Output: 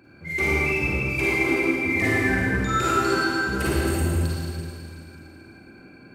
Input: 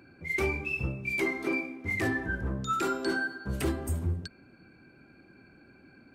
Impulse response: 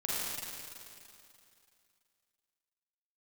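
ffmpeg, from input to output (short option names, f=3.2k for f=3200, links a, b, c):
-filter_complex "[1:a]atrim=start_sample=2205[a];[0:a][a]afir=irnorm=-1:irlink=0,volume=3dB"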